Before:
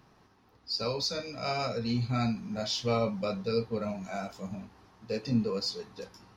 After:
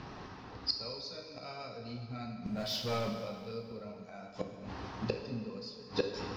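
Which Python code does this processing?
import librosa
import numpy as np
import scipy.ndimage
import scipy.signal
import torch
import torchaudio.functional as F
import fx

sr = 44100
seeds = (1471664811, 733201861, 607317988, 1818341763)

y = scipy.signal.sosfilt(scipy.signal.butter(4, 5500.0, 'lowpass', fs=sr, output='sos'), x)
y = fx.leveller(y, sr, passes=3, at=(2.46, 3.13))
y = fx.gate_flip(y, sr, shuts_db=-32.0, range_db=-27)
y = fx.rev_plate(y, sr, seeds[0], rt60_s=2.0, hf_ratio=0.95, predelay_ms=0, drr_db=4.0)
y = y * 10.0 ** (14.0 / 20.0)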